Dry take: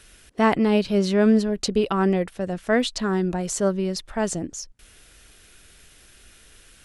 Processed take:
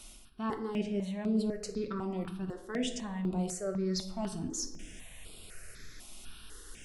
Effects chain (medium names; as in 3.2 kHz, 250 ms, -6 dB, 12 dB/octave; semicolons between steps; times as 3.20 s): reverse; compression 5:1, threshold -35 dBFS, peak gain reduction 19 dB; reverse; reverberation RT60 1.1 s, pre-delay 5 ms, DRR 4 dB; stepped phaser 4 Hz 450–6100 Hz; trim +2 dB